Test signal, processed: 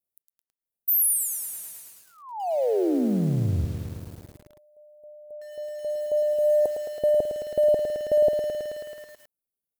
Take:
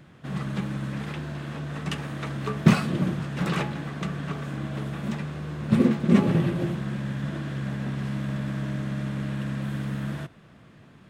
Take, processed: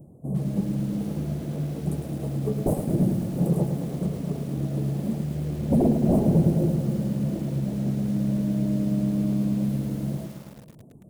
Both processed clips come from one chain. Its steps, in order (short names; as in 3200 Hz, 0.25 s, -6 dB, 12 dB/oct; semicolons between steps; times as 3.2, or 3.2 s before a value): high shelf 5800 Hz +2 dB; reverb removal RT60 0.6 s; wavefolder -18.5 dBFS; inverse Chebyshev band-stop 1800–4000 Hz, stop band 70 dB; on a send: thin delay 0.12 s, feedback 37%, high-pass 4400 Hz, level -21.5 dB; on the sum: lo-fi delay 0.108 s, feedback 80%, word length 8-bit, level -8 dB; gain +4.5 dB